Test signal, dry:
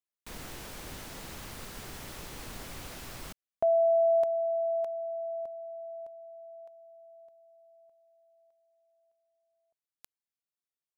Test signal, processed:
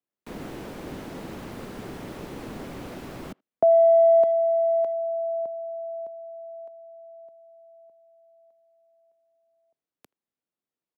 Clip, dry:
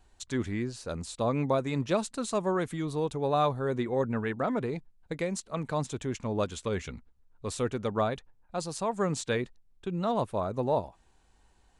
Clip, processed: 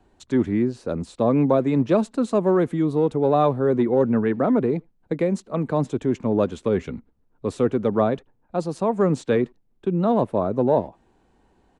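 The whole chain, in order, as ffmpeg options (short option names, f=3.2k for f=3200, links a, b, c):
-filter_complex "[0:a]bass=f=250:g=-4,treble=f=4k:g=-7,acrossover=split=150|510|5300[a][b][c][d];[b]asoftclip=type=hard:threshold=-29.5dB[e];[a][e][c][d]amix=inputs=4:normalize=0,equalizer=f=250:t=o:w=3:g=14.5,asplit=2[f][g];[g]adelay=80,highpass=300,lowpass=3.4k,asoftclip=type=hard:threshold=-21.5dB,volume=-30dB[h];[f][h]amix=inputs=2:normalize=0"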